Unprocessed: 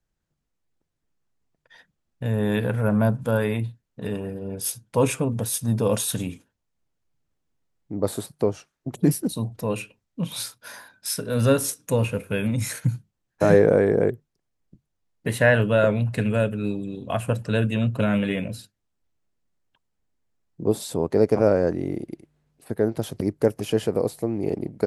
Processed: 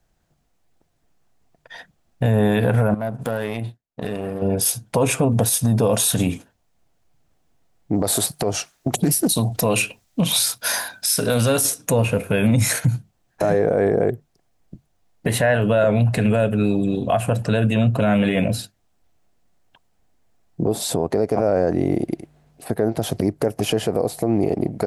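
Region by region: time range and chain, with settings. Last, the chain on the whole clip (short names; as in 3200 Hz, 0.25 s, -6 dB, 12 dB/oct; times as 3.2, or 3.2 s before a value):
2.94–4.42 low shelf 170 Hz -5.5 dB + compressor, threshold -31 dBFS + power-law curve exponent 1.4
7.94–11.65 high shelf 2400 Hz +11 dB + compressor 5:1, threshold -25 dBFS + Doppler distortion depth 0.12 ms
whole clip: bell 710 Hz +8.5 dB 0.39 oct; compressor 2:1, threshold -27 dBFS; maximiser +20 dB; gain -8 dB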